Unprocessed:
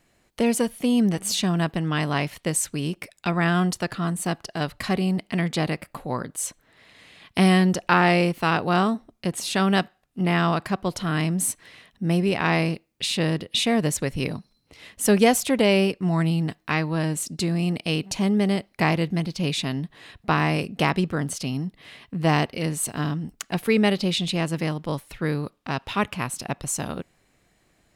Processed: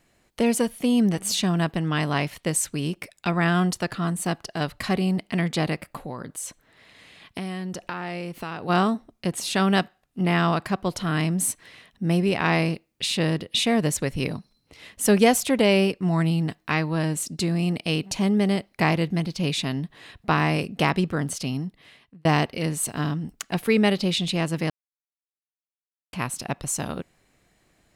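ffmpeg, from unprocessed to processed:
ffmpeg -i in.wav -filter_complex "[0:a]asplit=3[link_01][link_02][link_03];[link_01]afade=type=out:start_time=6.03:duration=0.02[link_04];[link_02]acompressor=threshold=-29dB:ratio=5:attack=3.2:release=140:knee=1:detection=peak,afade=type=in:start_time=6.03:duration=0.02,afade=type=out:start_time=8.68:duration=0.02[link_05];[link_03]afade=type=in:start_time=8.68:duration=0.02[link_06];[link_04][link_05][link_06]amix=inputs=3:normalize=0,asplit=4[link_07][link_08][link_09][link_10];[link_07]atrim=end=22.25,asetpts=PTS-STARTPTS,afade=type=out:start_time=21.52:duration=0.73[link_11];[link_08]atrim=start=22.25:end=24.7,asetpts=PTS-STARTPTS,afade=type=in:duration=0.004:curve=hsin,afade=type=out:start_time=2.446:duration=0.004:curve=hsin[link_12];[link_09]atrim=start=24.7:end=26.13,asetpts=PTS-STARTPTS,volume=0[link_13];[link_10]atrim=start=26.13,asetpts=PTS-STARTPTS,afade=type=in:duration=0.004:curve=hsin[link_14];[link_11][link_12][link_13][link_14]concat=n=4:v=0:a=1" out.wav

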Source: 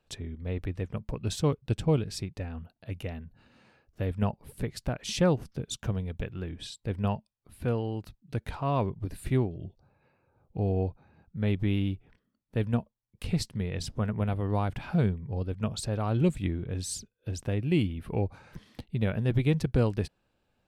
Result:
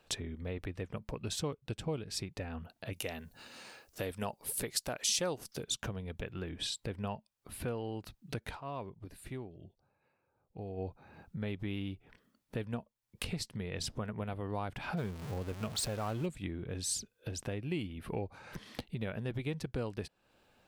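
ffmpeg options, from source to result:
ffmpeg -i in.wav -filter_complex "[0:a]asettb=1/sr,asplit=3[link_01][link_02][link_03];[link_01]atrim=end=2.934[link_04];[link_02]atrim=start=2.93:end=5.64,asetpts=PTS-STARTPTS,afade=type=in:duration=0.004:curve=qsin,afade=type=out:start_time=2.706:duration=0.004:curve=qsin,bass=frequency=250:gain=-7,treble=frequency=4000:gain=13[link_05];[link_03]atrim=start=5.636[link_06];[link_04][link_05]acrossfade=duration=0.004:curve1=hsin:curve2=qsin[link_07];[link_07][link_06]acrossfade=duration=0.004:curve1=qsin:curve2=hsin,asettb=1/sr,asplit=3[link_08][link_09][link_10];[link_08]atrim=end=14.974[link_11];[link_09]atrim=start=14.97:end=16.26,asetpts=PTS-STARTPTS,afade=type=in:duration=0.004:curve=qsin,afade=type=out:start_time=1.286:duration=0.004:curve=qsin,aeval=exprs='val(0)+0.5*0.0178*sgn(val(0))':channel_layout=same[link_12];[link_10]atrim=start=16.256[link_13];[link_11][link_12]acrossfade=duration=0.004:curve1=hsin:curve2=qsin[link_14];[link_14][link_13]acrossfade=duration=0.004:curve1=qsin:curve2=hsin,asplit=3[link_15][link_16][link_17];[link_15]atrim=end=8.61,asetpts=PTS-STARTPTS,afade=type=out:start_time=8.49:duration=0.12:silence=0.158489[link_18];[link_16]atrim=start=8.61:end=10.77,asetpts=PTS-STARTPTS,volume=-16dB[link_19];[link_17]atrim=start=10.77,asetpts=PTS-STARTPTS,afade=type=in:duration=0.12:silence=0.158489[link_20];[link_18][link_19][link_20]concat=n=3:v=0:a=1,acompressor=threshold=-44dB:ratio=3,lowshelf=frequency=240:gain=-9,volume=9.5dB" out.wav

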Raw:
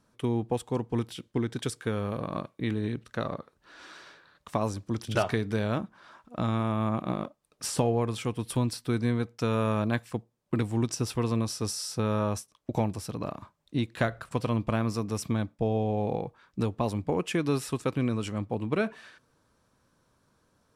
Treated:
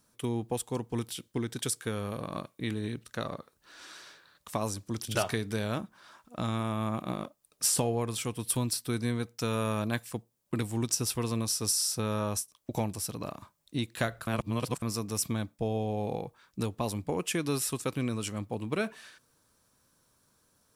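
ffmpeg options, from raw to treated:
ffmpeg -i in.wav -filter_complex "[0:a]asplit=3[link_01][link_02][link_03];[link_01]atrim=end=14.272[link_04];[link_02]atrim=start=14.268:end=14.822,asetpts=PTS-STARTPTS,areverse[link_05];[link_03]atrim=start=14.818[link_06];[link_04][link_05]acrossfade=duration=0.004:curve1=hsin:curve2=hsin[link_07];[link_07][link_06]acrossfade=duration=0.004:curve1=hsin:curve2=hsin,aemphasis=mode=production:type=75kf,volume=-4dB" out.wav

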